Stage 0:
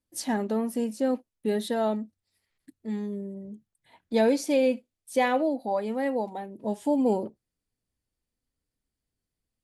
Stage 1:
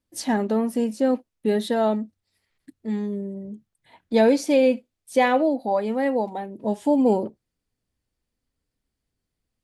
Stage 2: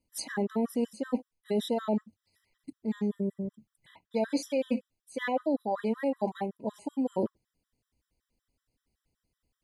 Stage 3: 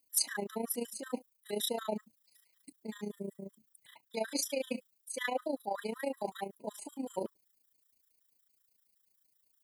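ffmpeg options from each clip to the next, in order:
-af "highshelf=f=8300:g=-7.5,volume=1.78"
-af "areverse,acompressor=threshold=0.0447:ratio=10,areverse,afftfilt=real='re*gt(sin(2*PI*5.3*pts/sr)*(1-2*mod(floor(b*sr/1024/1000),2)),0)':imag='im*gt(sin(2*PI*5.3*pts/sr)*(1-2*mod(floor(b*sr/1024/1000),2)),0)':win_size=1024:overlap=0.75,volume=1.41"
-af "aemphasis=mode=production:type=riaa,tremolo=f=28:d=0.71,acontrast=78,volume=0.422"

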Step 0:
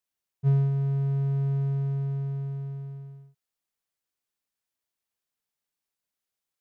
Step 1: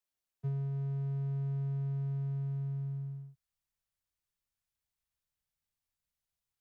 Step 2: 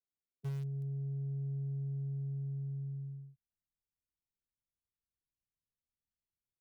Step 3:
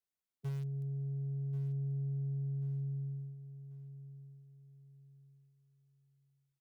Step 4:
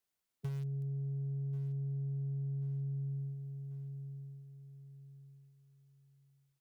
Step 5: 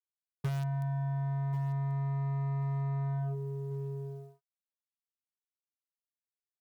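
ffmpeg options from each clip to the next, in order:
-filter_complex "[0:a]asubboost=boost=8.5:cutoff=110,acrossover=split=120|240|560[s0][s1][s2][s3];[s0]acompressor=threshold=0.0112:ratio=4[s4];[s1]acompressor=threshold=0.0158:ratio=4[s5];[s2]acompressor=threshold=0.00398:ratio=4[s6];[s3]acompressor=threshold=0.00158:ratio=4[s7];[s4][s5][s6][s7]amix=inputs=4:normalize=0,volume=0.631"
-filter_complex "[0:a]lowshelf=f=210:g=-7.5,acrossover=split=120|430[s0][s1][s2];[s2]acrusher=bits=6:dc=4:mix=0:aa=0.000001[s3];[s0][s1][s3]amix=inputs=3:normalize=0,volume=1.26"
-af "aecho=1:1:1087|2174|3261:0.211|0.0719|0.0244"
-af "acompressor=threshold=0.00891:ratio=6,volume=1.88"
-af "acrusher=bits=6:mix=0:aa=0.5,volume=1.88"

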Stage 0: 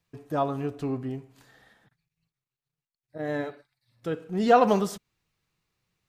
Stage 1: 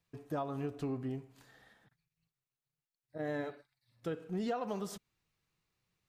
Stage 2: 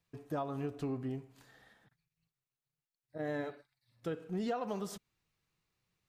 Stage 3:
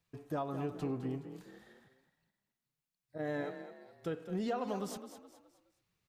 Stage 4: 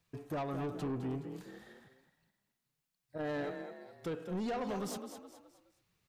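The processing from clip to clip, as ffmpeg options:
-af "acompressor=threshold=0.0398:ratio=16,volume=0.596"
-af anull
-filter_complex "[0:a]asplit=5[s0][s1][s2][s3][s4];[s1]adelay=210,afreqshift=33,volume=0.299[s5];[s2]adelay=420,afreqshift=66,volume=0.116[s6];[s3]adelay=630,afreqshift=99,volume=0.0452[s7];[s4]adelay=840,afreqshift=132,volume=0.0178[s8];[s0][s5][s6][s7][s8]amix=inputs=5:normalize=0"
-af "asoftclip=type=tanh:threshold=0.015,volume=1.58"

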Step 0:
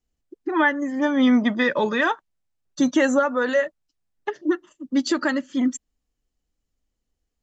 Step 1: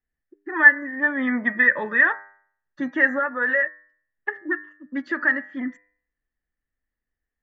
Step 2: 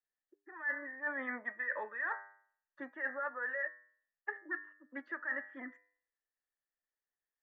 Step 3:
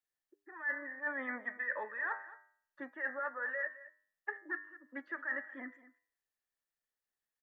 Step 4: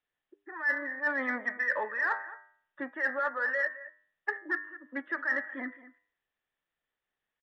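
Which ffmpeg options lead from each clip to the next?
-af "lowpass=f=1800:t=q:w=9.9,bandreject=f=100.4:t=h:w=4,bandreject=f=200.8:t=h:w=4,bandreject=f=301.2:t=h:w=4,bandreject=f=401.6:t=h:w=4,bandreject=f=502:t=h:w=4,bandreject=f=602.4:t=h:w=4,bandreject=f=702.8:t=h:w=4,bandreject=f=803.2:t=h:w=4,bandreject=f=903.6:t=h:w=4,bandreject=f=1004:t=h:w=4,bandreject=f=1104.4:t=h:w=4,bandreject=f=1204.8:t=h:w=4,bandreject=f=1305.2:t=h:w=4,bandreject=f=1405.6:t=h:w=4,bandreject=f=1506:t=h:w=4,bandreject=f=1606.4:t=h:w=4,bandreject=f=1706.8:t=h:w=4,bandreject=f=1807.2:t=h:w=4,bandreject=f=1907.6:t=h:w=4,bandreject=f=2008:t=h:w=4,bandreject=f=2108.4:t=h:w=4,bandreject=f=2208.8:t=h:w=4,bandreject=f=2309.2:t=h:w=4,bandreject=f=2409.6:t=h:w=4,volume=0.398"
-filter_complex "[0:a]acrossover=split=410 2200:gain=0.0708 1 0.1[s0][s1][s2];[s0][s1][s2]amix=inputs=3:normalize=0,areverse,acompressor=threshold=0.0398:ratio=16,areverse,volume=0.501"
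-af "aecho=1:1:216:0.141"
-filter_complex "[0:a]aresample=8000,aresample=44100,asplit=2[s0][s1];[s1]asoftclip=type=tanh:threshold=0.0178,volume=0.299[s2];[s0][s2]amix=inputs=2:normalize=0,volume=2"

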